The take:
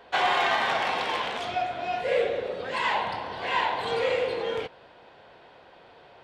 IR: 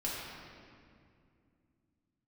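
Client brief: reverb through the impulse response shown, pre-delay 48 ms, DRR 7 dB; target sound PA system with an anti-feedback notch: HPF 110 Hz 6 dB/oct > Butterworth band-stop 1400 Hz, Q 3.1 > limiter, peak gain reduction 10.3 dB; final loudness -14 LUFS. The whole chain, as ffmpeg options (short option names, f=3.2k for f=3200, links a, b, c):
-filter_complex "[0:a]asplit=2[a][b];[1:a]atrim=start_sample=2205,adelay=48[c];[b][c]afir=irnorm=-1:irlink=0,volume=-11.5dB[d];[a][d]amix=inputs=2:normalize=0,highpass=f=110:p=1,asuperstop=centerf=1400:order=8:qfactor=3.1,volume=18dB,alimiter=limit=-5.5dB:level=0:latency=1"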